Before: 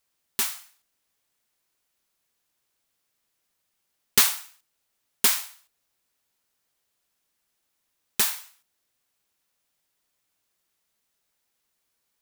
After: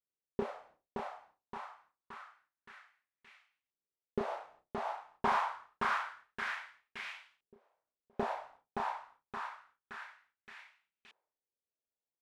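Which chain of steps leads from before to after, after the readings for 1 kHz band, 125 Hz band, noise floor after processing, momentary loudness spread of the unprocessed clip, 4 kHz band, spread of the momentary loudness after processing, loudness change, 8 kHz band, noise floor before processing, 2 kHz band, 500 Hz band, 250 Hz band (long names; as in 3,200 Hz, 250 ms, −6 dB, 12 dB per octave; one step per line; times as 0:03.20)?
+6.0 dB, −0.5 dB, below −85 dBFS, 17 LU, −19.5 dB, 21 LU, −16.5 dB, −34.0 dB, −77 dBFS, −4.0 dB, +5.5 dB, +1.0 dB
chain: downward expander −51 dBFS
reversed playback
downward compressor 16 to 1, threshold −28 dBFS, peak gain reduction 17 dB
reversed playback
double-tracking delay 32 ms −6 dB
on a send: repeating echo 571 ms, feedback 41%, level −5 dB
on the sum: auto-filter low-pass saw up 0.27 Hz 400–2,700 Hz
level +11 dB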